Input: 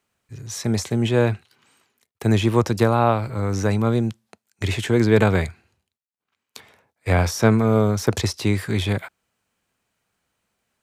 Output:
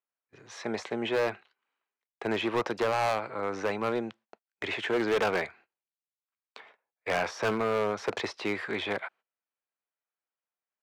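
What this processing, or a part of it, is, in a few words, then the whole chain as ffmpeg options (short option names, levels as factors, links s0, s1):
walkie-talkie: -af "highpass=500,lowpass=2500,asoftclip=type=hard:threshold=0.075,agate=range=0.1:threshold=0.002:ratio=16:detection=peak"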